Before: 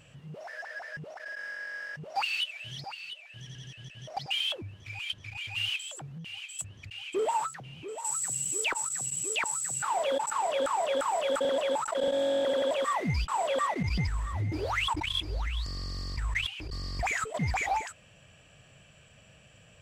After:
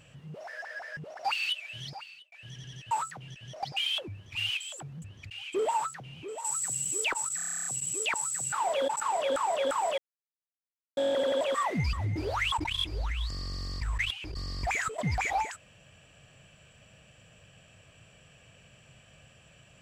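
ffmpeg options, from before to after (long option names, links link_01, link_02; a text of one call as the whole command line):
ffmpeg -i in.wav -filter_complex "[0:a]asplit=20[link_01][link_02][link_03][link_04][link_05][link_06][link_07][link_08][link_09][link_10][link_11][link_12][link_13][link_14][link_15][link_16][link_17][link_18][link_19][link_20];[link_01]atrim=end=1.192[link_21];[link_02]atrim=start=2.098:end=3.23,asetpts=PTS-STARTPTS,afade=type=out:start_time=0.692:duration=0.44[link_22];[link_03]atrim=start=3.23:end=3.822,asetpts=PTS-STARTPTS,afade=type=in:duration=0.004:curve=hsin[link_23];[link_04]atrim=start=7.338:end=7.712[link_24];[link_05]atrim=start=3.818:end=4.892[link_25];[link_06]atrim=start=5.538:end=6.212[link_26];[link_07]atrim=start=6.618:end=8.992[link_27];[link_08]atrim=start=8.958:end=8.992[link_28];[link_09]atrim=start=8.958:end=8.992[link_29];[link_10]atrim=start=8.958:end=8.992[link_30];[link_11]atrim=start=8.958:end=8.992[link_31];[link_12]atrim=start=8.958:end=8.992[link_32];[link_13]atrim=start=8.958:end=8.992[link_33];[link_14]atrim=start=8.958:end=8.992[link_34];[link_15]atrim=start=8.958:end=8.992[link_35];[link_16]atrim=start=8.958:end=8.992[link_36];[link_17]atrim=start=8.958:end=11.28,asetpts=PTS-STARTPTS,afade=type=out:start_time=2.318:duration=0.004:curve=hsin[link_37];[link_18]atrim=start=11.28:end=12.27,asetpts=PTS-STARTPTS,volume=0[link_38];[link_19]atrim=start=12.27:end=13.232,asetpts=PTS-STARTPTS,afade=type=in:duration=0.004:curve=hsin[link_39];[link_20]atrim=start=14.288[link_40];[link_22][link_23]concat=n=2:v=0:a=1[link_41];[link_21][link_41]acrossfade=duration=0.004:curve1=hsin:curve2=hsin[link_42];[link_42][link_24]acrossfade=duration=0.004:curve1=hsin:curve2=hsin[link_43];[link_43][link_25]acrossfade=duration=0.004:curve1=hsin:curve2=hsin[link_44];[link_44][link_26]acrossfade=duration=0.004:curve1=hsin:curve2=hsin[link_45];[link_45][link_27]acrossfade=duration=0.004:curve1=hsin:curve2=hsin[link_46];[link_46][link_28]acrossfade=duration=0.004:curve1=hsin:curve2=hsin[link_47];[link_47][link_29]acrossfade=duration=0.004:curve1=hsin:curve2=hsin[link_48];[link_48][link_30]acrossfade=duration=0.004:curve1=hsin:curve2=hsin[link_49];[link_49][link_31]acrossfade=duration=0.004:curve1=hsin:curve2=hsin[link_50];[link_50][link_32]acrossfade=duration=0.004:curve1=hsin:curve2=hsin[link_51];[link_51][link_33]acrossfade=duration=0.004:curve1=hsin:curve2=hsin[link_52];[link_52][link_34]acrossfade=duration=0.004:curve1=hsin:curve2=hsin[link_53];[link_53][link_35]acrossfade=duration=0.004:curve1=hsin:curve2=hsin[link_54];[link_54][link_36]acrossfade=duration=0.004:curve1=hsin:curve2=hsin[link_55];[link_37][link_38][link_39]concat=n=3:v=0:a=1[link_56];[link_55][link_56]acrossfade=duration=0.004:curve1=hsin:curve2=hsin[link_57];[link_57][link_40]acrossfade=duration=0.004:curve1=hsin:curve2=hsin" out.wav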